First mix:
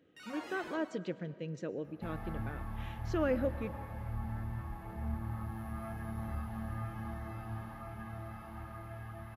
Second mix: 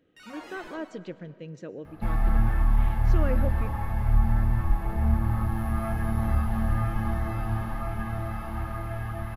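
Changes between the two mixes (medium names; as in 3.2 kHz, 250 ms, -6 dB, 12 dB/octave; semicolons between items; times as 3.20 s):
first sound: send +8.0 dB; second sound +11.5 dB; master: remove high-pass 73 Hz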